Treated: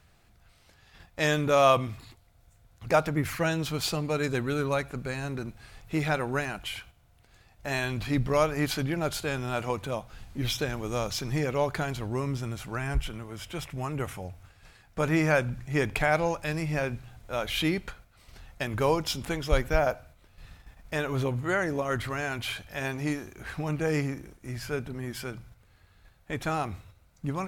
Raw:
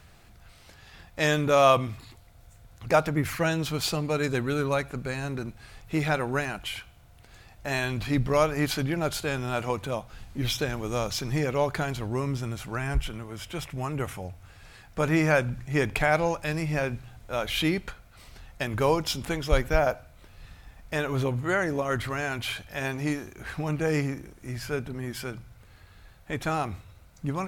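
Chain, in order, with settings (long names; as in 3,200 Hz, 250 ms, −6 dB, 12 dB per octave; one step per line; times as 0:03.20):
noise gate −48 dBFS, range −6 dB
level −1.5 dB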